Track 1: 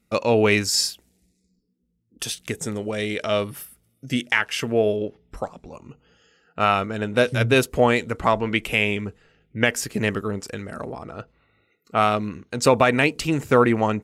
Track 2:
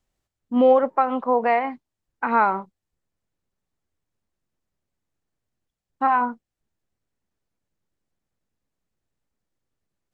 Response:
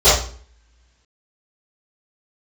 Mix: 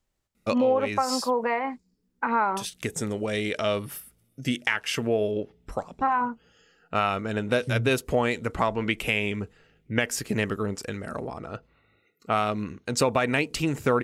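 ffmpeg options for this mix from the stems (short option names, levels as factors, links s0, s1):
-filter_complex "[0:a]adelay=350,volume=0.891[s0];[1:a]bandreject=f=720:w=12,volume=0.944,asplit=2[s1][s2];[s2]apad=whole_len=634331[s3];[s0][s3]sidechaincompress=threshold=0.0631:ratio=8:attack=32:release=568[s4];[s4][s1]amix=inputs=2:normalize=0,acompressor=threshold=0.0708:ratio=2"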